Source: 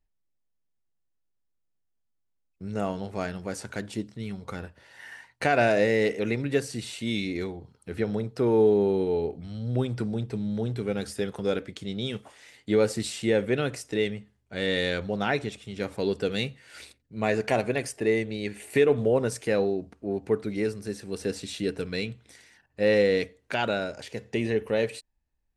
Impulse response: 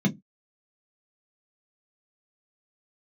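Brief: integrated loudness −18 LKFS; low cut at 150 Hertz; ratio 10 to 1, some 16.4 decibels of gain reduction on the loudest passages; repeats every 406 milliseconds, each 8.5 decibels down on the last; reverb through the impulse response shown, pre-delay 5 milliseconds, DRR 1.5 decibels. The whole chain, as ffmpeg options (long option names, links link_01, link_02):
-filter_complex "[0:a]highpass=150,acompressor=threshold=-34dB:ratio=10,aecho=1:1:406|812|1218|1624:0.376|0.143|0.0543|0.0206,asplit=2[link_01][link_02];[1:a]atrim=start_sample=2205,adelay=5[link_03];[link_02][link_03]afir=irnorm=-1:irlink=0,volume=-10dB[link_04];[link_01][link_04]amix=inputs=2:normalize=0,volume=6dB"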